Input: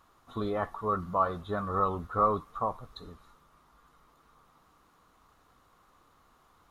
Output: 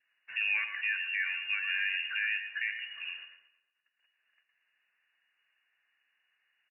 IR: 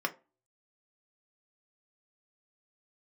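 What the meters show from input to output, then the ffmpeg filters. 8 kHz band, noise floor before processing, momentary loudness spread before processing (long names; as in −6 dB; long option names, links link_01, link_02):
can't be measured, −65 dBFS, 15 LU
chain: -filter_complex "[0:a]aemphasis=mode=reproduction:type=75kf,agate=range=-53dB:threshold=-56dB:ratio=16:detection=peak,lowpass=frequency=2500:width_type=q:width=0.5098,lowpass=frequency=2500:width_type=q:width=0.6013,lowpass=frequency=2500:width_type=q:width=0.9,lowpass=frequency=2500:width_type=q:width=2.563,afreqshift=-2900,highpass=110,asplit=2[link_01][link_02];[link_02]acompressor=threshold=-43dB:ratio=6,volume=3dB[link_03];[link_01][link_03]amix=inputs=2:normalize=0,alimiter=limit=-21dB:level=0:latency=1:release=161,acompressor=mode=upward:threshold=-51dB:ratio=2.5,asplit=2[link_04][link_05];[link_05]adelay=228,lowpass=frequency=1600:poles=1,volume=-15dB,asplit=2[link_06][link_07];[link_07]adelay=228,lowpass=frequency=1600:poles=1,volume=0.33,asplit=2[link_08][link_09];[link_09]adelay=228,lowpass=frequency=1600:poles=1,volume=0.33[link_10];[link_04][link_06][link_08][link_10]amix=inputs=4:normalize=0,asplit=2[link_11][link_12];[1:a]atrim=start_sample=2205,adelay=112[link_13];[link_12][link_13]afir=irnorm=-1:irlink=0,volume=-15dB[link_14];[link_11][link_14]amix=inputs=2:normalize=0,adynamicequalizer=threshold=0.00398:dfrequency=1200:dqfactor=2:tfrequency=1200:tqfactor=2:attack=5:release=100:ratio=0.375:range=2:mode=cutabove:tftype=bell"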